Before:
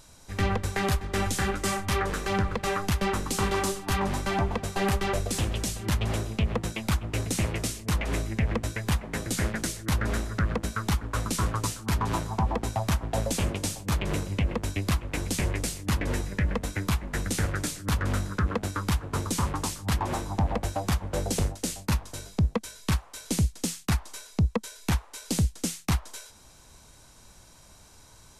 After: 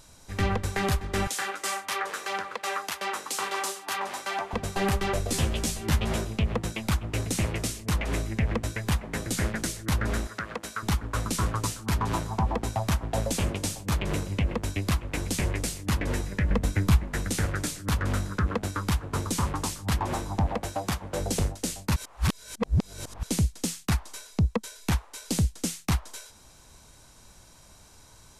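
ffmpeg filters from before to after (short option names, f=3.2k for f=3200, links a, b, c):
-filter_complex "[0:a]asettb=1/sr,asplit=3[a][b][c];[a]atrim=end=1.274[d];[b]atrim=start=1.27:end=4.53,asetpts=PTS-STARTPTS,afade=t=in:d=0.004:c=qsin,afade=t=out:st=3.256:d=0.004:c=qsin,highpass=620[e];[c]atrim=start=4.526[f];[d][e]acrossfade=d=0.004:c1=hsin:c2=qsin[g];[g][f]acrossfade=d=0.004:c1=qsin:c2=hsin,asettb=1/sr,asplit=3[h][i][j];[h]atrim=end=5.274[k];[i]atrim=start=5.27:end=6.25,asetpts=PTS-STARTPTS,afade=t=in:d=0.004:c=qsin,afade=t=out:st=0.976:d=0.004:c=qsin,asplit=2[l][m];[m]adelay=13,volume=-3dB[n];[l][n]amix=inputs=2:normalize=0,atrim=end_sample=43218[o];[j]atrim=start=6.246[p];[k][o]acrossfade=d=0.004:c1=hsin:c2=qsin[q];[q][p]acrossfade=d=0.004:c1=qsin:c2=hsin,asettb=1/sr,asplit=3[r][s][t];[r]atrim=end=10.274[u];[s]atrim=start=10.27:end=10.83,asetpts=PTS-STARTPTS,afade=t=in:d=0.004:c=qsin,afade=t=out:st=0.556:d=0.004:c=qsin,highpass=f=680:p=1[v];[t]atrim=start=10.826[w];[u][v]acrossfade=d=0.004:c1=hsin:c2=qsin[x];[x][w]acrossfade=d=0.004:c1=qsin:c2=hsin,asettb=1/sr,asplit=3[y][z][aa];[y]atrim=end=16.504[ab];[z]atrim=start=16.5:end=17.04,asetpts=PTS-STARTPTS,afade=t=in:d=0.004:c=qsin,afade=t=out:st=0.536:d=0.004:c=qsin,lowshelf=f=250:g=8[ac];[aa]atrim=start=17.036[ad];[ab][ac]acrossfade=d=0.004:c1=hsin:c2=qsin[ae];[ae][ad]acrossfade=d=0.004:c1=qsin:c2=hsin,asettb=1/sr,asplit=3[af][ag][ah];[af]atrim=end=20.494[ai];[ag]atrim=start=20.49:end=21.2,asetpts=PTS-STARTPTS,afade=t=in:d=0.004:c=qsin,afade=t=out:st=0.706:d=0.004:c=qsin,lowshelf=f=98:g=-10.5[aj];[ah]atrim=start=21.196[ak];[ai][aj]acrossfade=d=0.004:c1=hsin:c2=qsin[al];[al][ak]acrossfade=d=0.004:c1=qsin:c2=hsin,asplit=3[am][an][ao];[am]atrim=end=21.962[ap];[an]atrim=start=21.958:end=23.232,asetpts=PTS-STARTPTS,areverse[aq];[ao]atrim=start=23.228[ar];[ap][aq]acrossfade=d=0.004:c1=hsin:c2=hsin[as];[as][ar]acrossfade=d=0.004:c1=hsin:c2=hsin"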